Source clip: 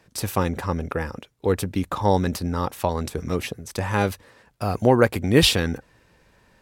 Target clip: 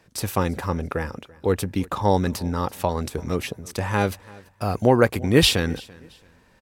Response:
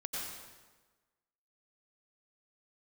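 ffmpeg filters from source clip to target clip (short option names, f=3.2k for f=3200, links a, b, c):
-af "aecho=1:1:336|672:0.0708|0.0205"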